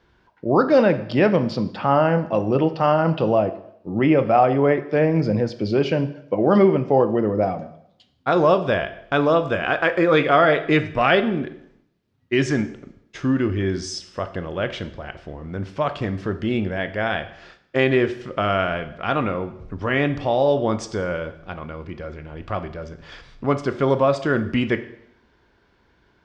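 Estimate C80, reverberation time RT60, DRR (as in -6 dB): 16.5 dB, 0.70 s, 10.0 dB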